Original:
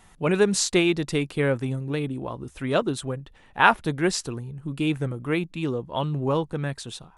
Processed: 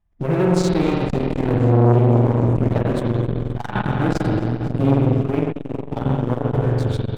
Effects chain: gate -46 dBFS, range -19 dB; RIAA curve playback; compression 2:1, threshold -23 dBFS, peak gain reduction 7.5 dB; waveshaping leveller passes 3; feedback echo behind a high-pass 257 ms, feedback 83%, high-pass 5.5 kHz, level -19 dB; spring tank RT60 3 s, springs 45 ms, chirp 60 ms, DRR -4 dB; formant-preserving pitch shift -2 st; transformer saturation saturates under 450 Hz; trim -4 dB

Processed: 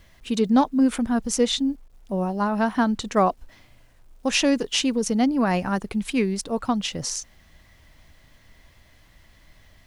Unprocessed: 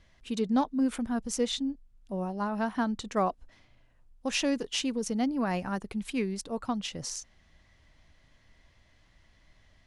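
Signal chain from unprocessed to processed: word length cut 12-bit, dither none; trim +8 dB

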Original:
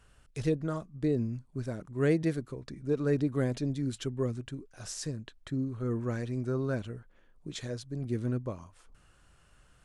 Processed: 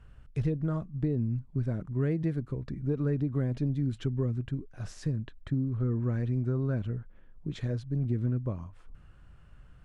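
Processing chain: tone controls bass +10 dB, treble -14 dB; compression, threshold -25 dBFS, peak gain reduction 8.5 dB

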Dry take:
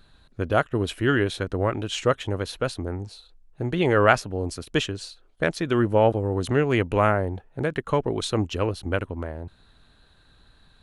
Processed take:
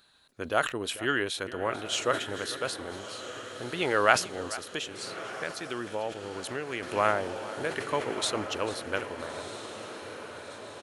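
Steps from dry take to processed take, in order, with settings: high-pass 600 Hz 6 dB/octave; treble shelf 4.3 kHz +7 dB; echo that smears into a reverb 1312 ms, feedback 61%, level -11 dB; 4.51–6.83 s: compression 2:1, threshold -33 dBFS, peak gain reduction 9.5 dB; delay 444 ms -17 dB; decay stretcher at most 140 dB/s; trim -3 dB

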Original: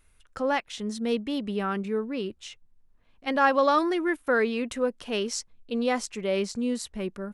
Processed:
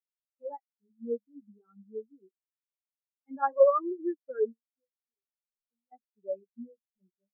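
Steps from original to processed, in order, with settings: 4.52–5.92 s: compression 12:1, threshold -38 dBFS, peak gain reduction 18 dB; flange 0.49 Hz, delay 9.1 ms, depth 8.8 ms, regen -23%; spectral contrast expander 4:1

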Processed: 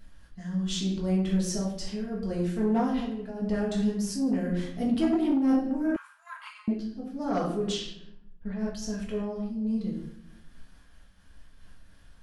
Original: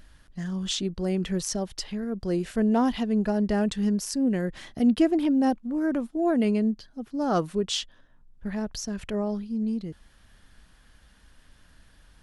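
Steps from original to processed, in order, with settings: 2.91–3.42 s: compression 5:1, threshold -30 dBFS, peak gain reduction 9 dB; 7.72–8.59 s: distance through air 93 m; reverberation RT60 0.80 s, pre-delay 4 ms, DRR -4.5 dB; saturation -9 dBFS, distortion -18 dB; 5.96–6.68 s: Chebyshev high-pass 960 Hz, order 6; random flutter of the level, depth 60%; trim -5 dB

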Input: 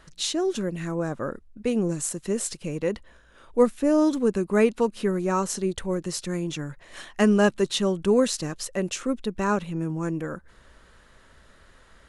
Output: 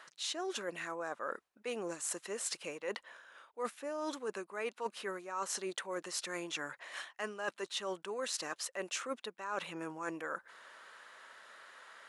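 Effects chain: high-pass 870 Hz 12 dB/octave; treble shelf 2.9 kHz -8 dB; reverse; compression 16:1, threshold -41 dBFS, peak gain reduction 19 dB; reverse; trim +6 dB

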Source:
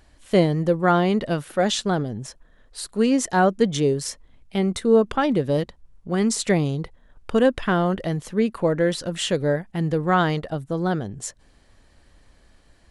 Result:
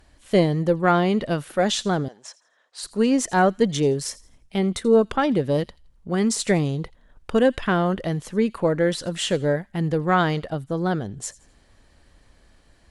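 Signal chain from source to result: Chebyshev shaper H 2 -20 dB, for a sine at -5.5 dBFS; 2.08–2.83 s: Chebyshev band-pass 750–7000 Hz, order 2; feedback echo behind a high-pass 84 ms, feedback 33%, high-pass 2.6 kHz, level -19.5 dB

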